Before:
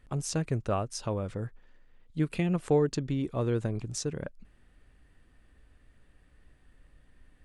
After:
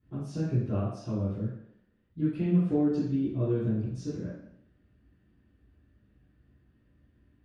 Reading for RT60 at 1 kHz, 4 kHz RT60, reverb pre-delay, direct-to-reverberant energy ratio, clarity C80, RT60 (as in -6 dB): 0.70 s, 0.70 s, 3 ms, -13.5 dB, 4.5 dB, 0.70 s